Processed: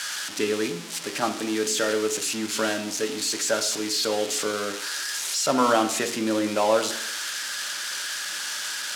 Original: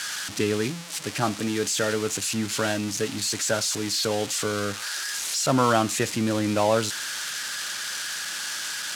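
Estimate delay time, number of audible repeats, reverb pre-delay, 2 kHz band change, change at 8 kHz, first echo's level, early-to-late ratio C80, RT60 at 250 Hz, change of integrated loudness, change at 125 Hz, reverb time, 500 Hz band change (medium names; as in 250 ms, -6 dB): no echo, no echo, 3 ms, +0.5 dB, 0.0 dB, no echo, 14.0 dB, 0.70 s, +0.5 dB, -11.5 dB, 0.70 s, +1.0 dB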